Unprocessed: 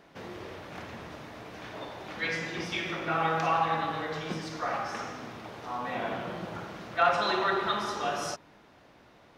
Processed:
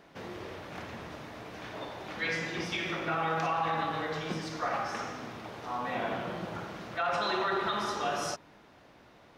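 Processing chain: peak limiter -21.5 dBFS, peak gain reduction 9.5 dB

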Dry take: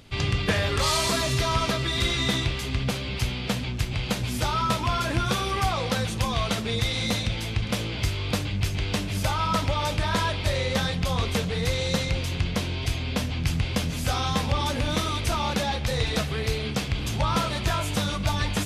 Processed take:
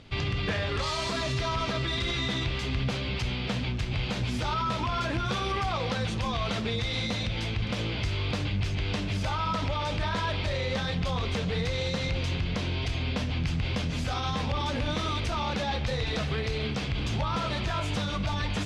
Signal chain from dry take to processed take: peak limiter -20.5 dBFS, peak gain reduction 7.5 dB; low-pass 5 kHz 12 dB/octave

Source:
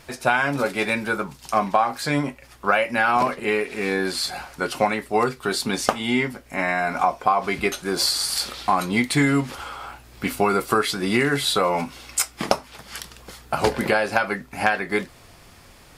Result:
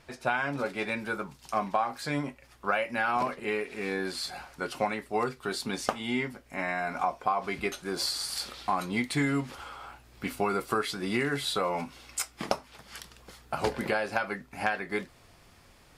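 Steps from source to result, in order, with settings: treble shelf 7.9 kHz -11 dB, from 0.99 s -3.5 dB; trim -8.5 dB

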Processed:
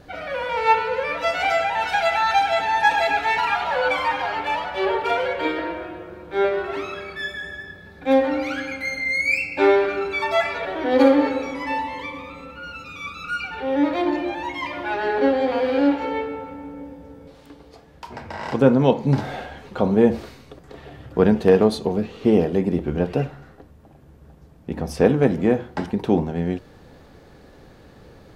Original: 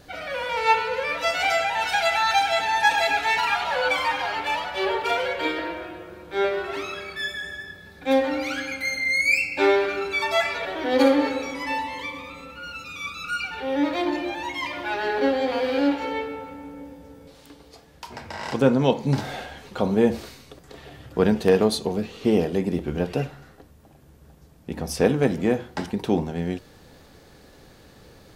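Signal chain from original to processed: treble shelf 3.1 kHz -11.5 dB; trim +3.5 dB

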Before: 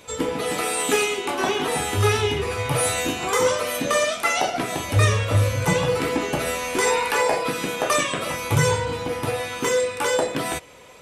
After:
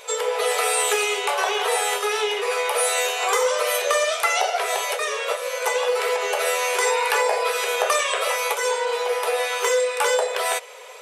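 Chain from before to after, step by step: compression, threshold -23 dBFS, peak gain reduction 10 dB; brick-wall FIR high-pass 400 Hz; trim +6 dB

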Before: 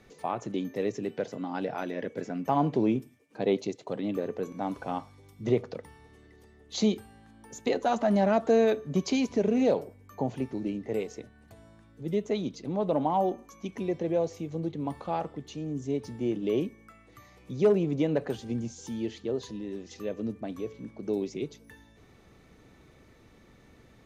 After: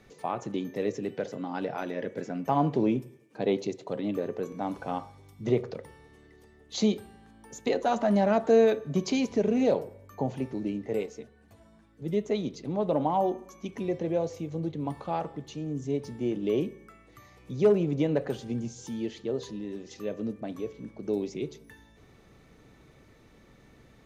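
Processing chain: on a send at -15 dB: reverberation RT60 0.70 s, pre-delay 3 ms; 11.06–12.02 s: on the sum: three-phase chorus

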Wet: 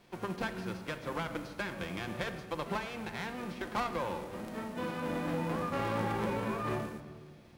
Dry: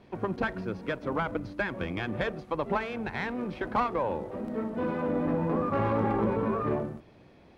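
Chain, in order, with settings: formants flattened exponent 0.6; simulated room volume 2700 m³, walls mixed, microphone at 0.86 m; trim -7 dB

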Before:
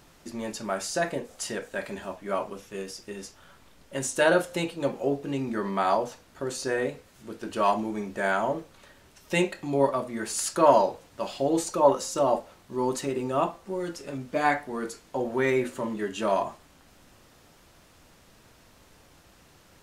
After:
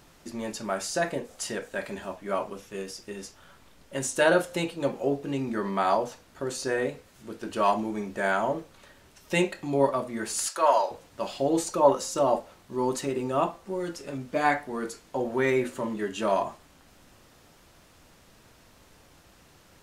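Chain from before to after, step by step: 10.48–10.91 s: high-pass 690 Hz 12 dB/octave

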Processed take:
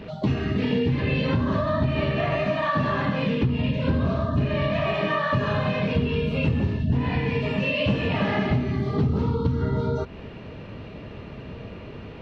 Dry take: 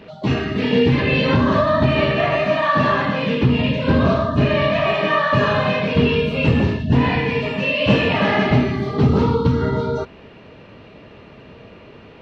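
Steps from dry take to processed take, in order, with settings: bass shelf 190 Hz +10 dB; compression 4:1, threshold -22 dBFS, peak gain reduction 14.5 dB

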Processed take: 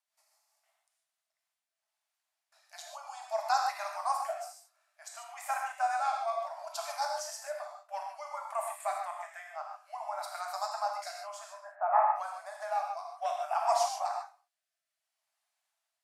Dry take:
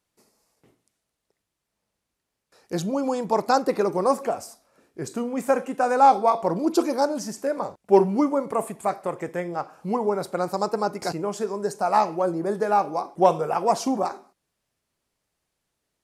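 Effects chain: 11.60–12.16 s: steep low-pass 2 kHz 36 dB/octave; rotary cabinet horn 5 Hz, later 0.6 Hz, at 0.97 s; brick-wall FIR high-pass 590 Hz; gated-style reverb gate 170 ms flat, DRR 0.5 dB; trim -5.5 dB

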